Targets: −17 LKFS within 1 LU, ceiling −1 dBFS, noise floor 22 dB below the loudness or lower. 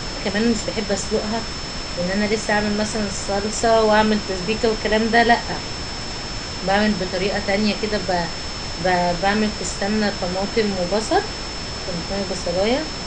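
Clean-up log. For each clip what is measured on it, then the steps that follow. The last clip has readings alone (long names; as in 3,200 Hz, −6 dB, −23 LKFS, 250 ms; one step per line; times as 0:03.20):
interfering tone 5,300 Hz; level of the tone −32 dBFS; background noise floor −29 dBFS; target noise floor −43 dBFS; integrated loudness −21.0 LKFS; sample peak −2.0 dBFS; target loudness −17.0 LKFS
→ notch filter 5,300 Hz, Q 30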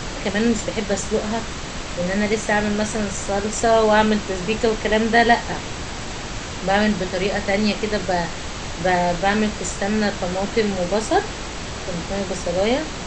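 interfering tone none found; background noise floor −31 dBFS; target noise floor −44 dBFS
→ noise reduction from a noise print 13 dB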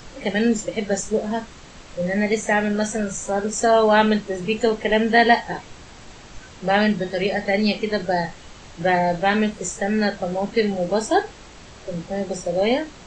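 background noise floor −43 dBFS; target noise floor −44 dBFS
→ noise reduction from a noise print 6 dB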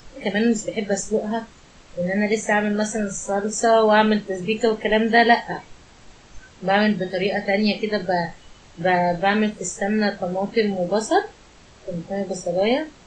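background noise floor −49 dBFS; integrated loudness −21.5 LKFS; sample peak −2.5 dBFS; target loudness −17.0 LKFS
→ level +4.5 dB
brickwall limiter −1 dBFS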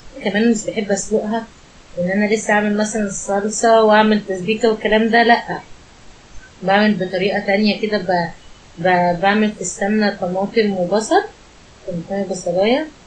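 integrated loudness −17.0 LKFS; sample peak −1.0 dBFS; background noise floor −44 dBFS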